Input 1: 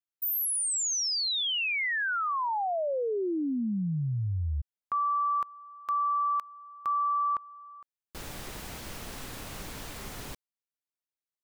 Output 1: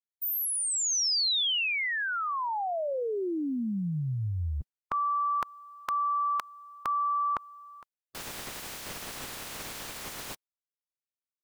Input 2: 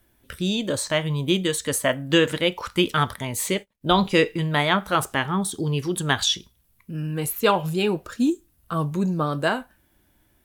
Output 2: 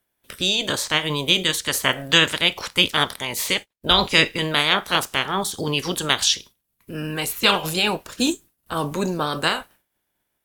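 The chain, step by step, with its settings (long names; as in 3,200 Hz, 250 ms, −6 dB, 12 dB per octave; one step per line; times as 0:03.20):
ceiling on every frequency bin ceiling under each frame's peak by 18 dB
noise gate with hold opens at −47 dBFS, closes at −53 dBFS, hold 14 ms, range −13 dB
dynamic equaliser 4,300 Hz, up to +4 dB, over −35 dBFS, Q 0.72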